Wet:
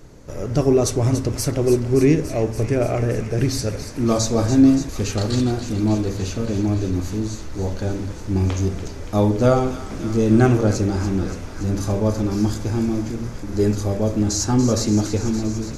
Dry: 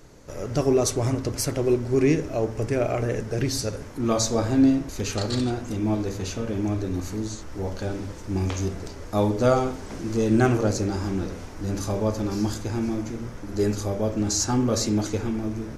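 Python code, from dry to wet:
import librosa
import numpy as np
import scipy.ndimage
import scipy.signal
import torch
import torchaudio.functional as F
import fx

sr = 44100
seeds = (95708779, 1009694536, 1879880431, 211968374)

y = fx.low_shelf(x, sr, hz=390.0, db=6.0)
y = fx.echo_wet_highpass(y, sr, ms=286, feedback_pct=78, hz=1400.0, wet_db=-10)
y = y * librosa.db_to_amplitude(1.0)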